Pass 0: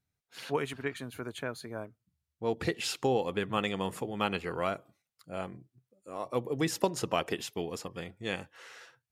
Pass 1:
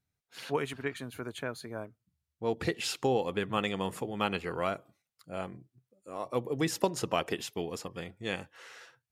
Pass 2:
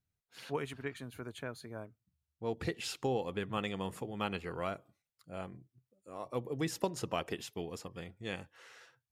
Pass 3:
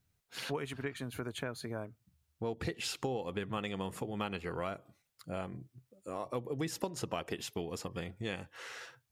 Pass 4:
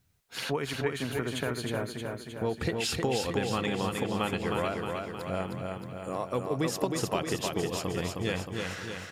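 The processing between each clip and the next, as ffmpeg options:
-af anull
-af "lowshelf=f=110:g=8,volume=-6dB"
-af "acompressor=threshold=-47dB:ratio=3,volume=10dB"
-af "aecho=1:1:312|624|936|1248|1560|1872|2184|2496:0.631|0.372|0.22|0.13|0.0765|0.0451|0.0266|0.0157,volume=6dB"

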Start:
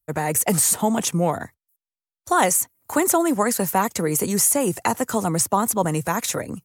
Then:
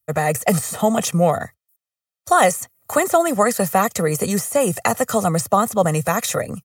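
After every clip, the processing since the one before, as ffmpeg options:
-af "deesser=0.4,highpass=86,aecho=1:1:1.6:0.58,volume=3.5dB"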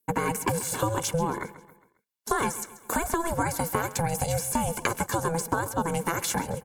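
-af "acompressor=threshold=-23dB:ratio=6,aeval=exprs='val(0)*sin(2*PI*330*n/s)':c=same,aecho=1:1:135|270|405|540:0.15|0.0718|0.0345|0.0165,volume=2dB"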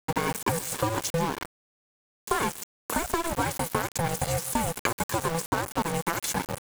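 -af "aeval=exprs='val(0)*gte(abs(val(0)),0.0422)':c=same"

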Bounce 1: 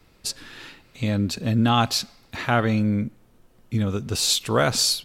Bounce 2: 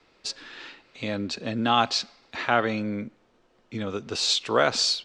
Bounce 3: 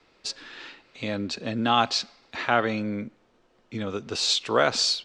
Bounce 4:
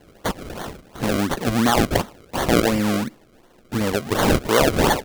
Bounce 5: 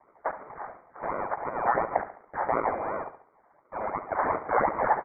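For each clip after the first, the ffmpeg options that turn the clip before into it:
-filter_complex "[0:a]lowpass=f=8.7k:w=0.5412,lowpass=f=8.7k:w=1.3066,acrossover=split=270 6400:gain=0.178 1 0.112[a][b][c];[a][b][c]amix=inputs=3:normalize=0"
-af anull
-filter_complex "[0:a]asplit=2[a][b];[b]acompressor=threshold=-32dB:ratio=6,volume=-1dB[c];[a][c]amix=inputs=2:normalize=0,acrusher=samples=34:mix=1:aa=0.000001:lfo=1:lforange=34:lforate=2.8,alimiter=level_in=11.5dB:limit=-1dB:release=50:level=0:latency=1,volume=-6dB"
-filter_complex "[0:a]highpass=f=1.9k:t=q:w=3.5,asplit=2[a][b];[b]aecho=0:1:70|140|210|280:0.251|0.098|0.0382|0.0149[c];[a][c]amix=inputs=2:normalize=0,lowpass=f=2.2k:t=q:w=0.5098,lowpass=f=2.2k:t=q:w=0.6013,lowpass=f=2.2k:t=q:w=0.9,lowpass=f=2.2k:t=q:w=2.563,afreqshift=-2600,volume=-3.5dB"

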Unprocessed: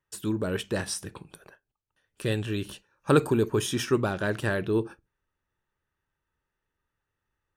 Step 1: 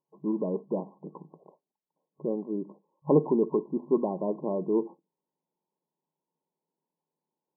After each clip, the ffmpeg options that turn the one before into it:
-af "afftfilt=real='re*between(b*sr/4096,150,1100)':imag='im*between(b*sr/4096,150,1100)':win_size=4096:overlap=0.75"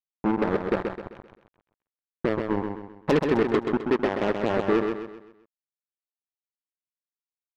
-filter_complex "[0:a]acompressor=threshold=-32dB:ratio=2.5,acrusher=bits=4:mix=0:aa=0.5,asplit=2[a][b];[b]aecho=0:1:130|260|390|520|650:0.531|0.212|0.0849|0.034|0.0136[c];[a][c]amix=inputs=2:normalize=0,volume=8.5dB"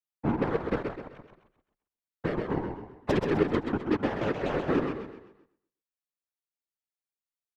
-af "afftfilt=real='hypot(re,im)*cos(2*PI*random(0))':imag='hypot(re,im)*sin(2*PI*random(1))':win_size=512:overlap=0.75,aecho=1:1:120|240|360:0.158|0.0523|0.0173,afreqshift=-32,volume=2dB"

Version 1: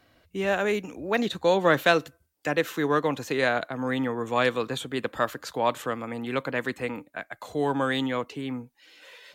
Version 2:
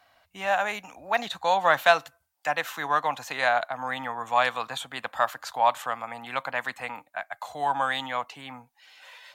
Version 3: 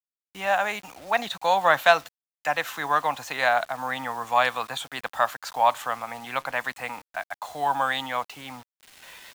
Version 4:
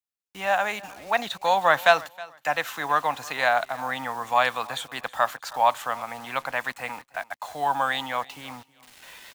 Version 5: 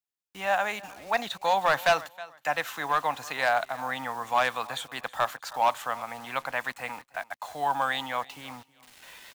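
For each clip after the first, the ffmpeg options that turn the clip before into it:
-af "lowshelf=f=550:t=q:w=3:g=-11"
-af "acrusher=bits=7:mix=0:aa=0.000001,volume=1.5dB"
-af "aecho=1:1:318|636:0.0891|0.0214"
-af "asoftclip=type=hard:threshold=-13dB,volume=-2.5dB"

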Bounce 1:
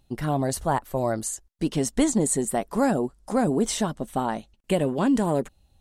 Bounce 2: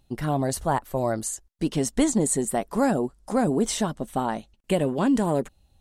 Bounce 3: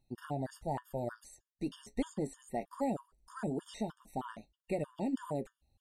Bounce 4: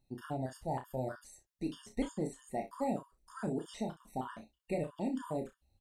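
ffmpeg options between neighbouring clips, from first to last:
-af anull
-filter_complex "[0:a]acrossover=split=4000[a][b];[b]acompressor=threshold=-40dB:ratio=4:attack=1:release=60[c];[a][c]amix=inputs=2:normalize=0,flanger=delay=8:depth=1.2:regen=-65:speed=1.5:shape=triangular,afftfilt=real='re*gt(sin(2*PI*3.2*pts/sr)*(1-2*mod(floor(b*sr/1024/920),2)),0)':imag='im*gt(sin(2*PI*3.2*pts/sr)*(1-2*mod(floor(b*sr/1024/920),2)),0)':win_size=1024:overlap=0.75,volume=-7dB"
-af "aecho=1:1:31|63:0.501|0.2,volume=-1dB"

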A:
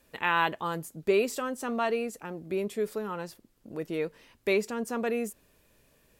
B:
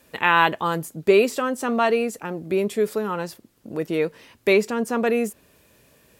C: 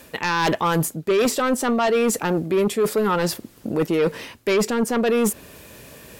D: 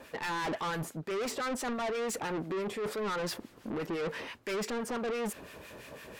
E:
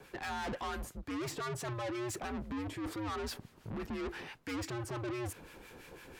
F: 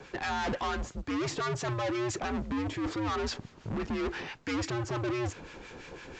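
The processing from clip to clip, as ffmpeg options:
-filter_complex "[0:a]highpass=67,acrossover=split=4000[a][b];[b]alimiter=level_in=10.5dB:limit=-24dB:level=0:latency=1:release=277,volume=-10.5dB[c];[a][c]amix=inputs=2:normalize=0,volume=8.5dB"
-af "areverse,acompressor=threshold=-27dB:ratio=8,areverse,aeval=exprs='0.126*sin(PI/2*2*val(0)/0.126)':c=same,volume=3.5dB"
-filter_complex "[0:a]asplit=2[a][b];[b]highpass=f=720:p=1,volume=8dB,asoftclip=type=tanh:threshold=-14dB[c];[a][c]amix=inputs=2:normalize=0,lowpass=f=1.8k:p=1,volume=-6dB,acrossover=split=1200[d][e];[d]aeval=exprs='val(0)*(1-0.7/2+0.7/2*cos(2*PI*5.9*n/s))':c=same[f];[e]aeval=exprs='val(0)*(1-0.7/2-0.7/2*cos(2*PI*5.9*n/s))':c=same[g];[f][g]amix=inputs=2:normalize=0,asoftclip=type=tanh:threshold=-31.5dB"
-af "afreqshift=-110,volume=-4.5dB"
-af "volume=6.5dB" -ar 16000 -c:a pcm_mulaw

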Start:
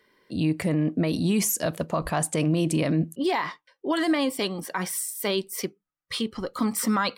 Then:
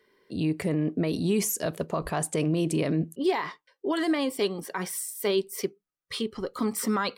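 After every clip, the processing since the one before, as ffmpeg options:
-af "equalizer=f=410:t=o:w=0.29:g=9,volume=-3.5dB"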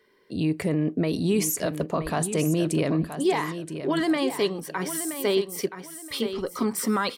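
-af "aecho=1:1:974|1948|2922:0.316|0.0791|0.0198,volume=2dB"

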